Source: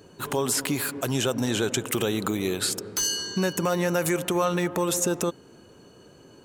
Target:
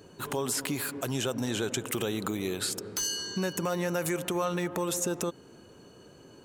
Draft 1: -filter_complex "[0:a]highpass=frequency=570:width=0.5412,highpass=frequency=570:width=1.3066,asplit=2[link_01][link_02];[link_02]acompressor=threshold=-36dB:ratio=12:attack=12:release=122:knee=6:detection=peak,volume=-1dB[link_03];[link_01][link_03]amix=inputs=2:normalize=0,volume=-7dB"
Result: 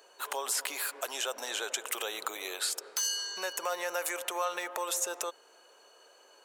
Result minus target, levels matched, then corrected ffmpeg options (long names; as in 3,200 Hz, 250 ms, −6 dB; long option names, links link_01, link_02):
500 Hz band −3.5 dB
-filter_complex "[0:a]asplit=2[link_01][link_02];[link_02]acompressor=threshold=-36dB:ratio=12:attack=12:release=122:knee=6:detection=peak,volume=-1dB[link_03];[link_01][link_03]amix=inputs=2:normalize=0,volume=-7dB"